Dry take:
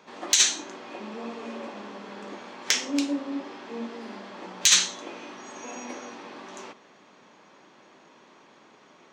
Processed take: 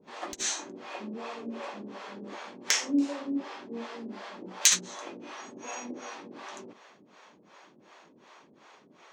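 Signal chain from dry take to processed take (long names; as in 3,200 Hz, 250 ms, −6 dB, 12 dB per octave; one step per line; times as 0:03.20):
dynamic equaliser 3,400 Hz, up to −6 dB, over −40 dBFS, Q 1.1
two-band tremolo in antiphase 2.7 Hz, depth 100%, crossover 460 Hz
level +3 dB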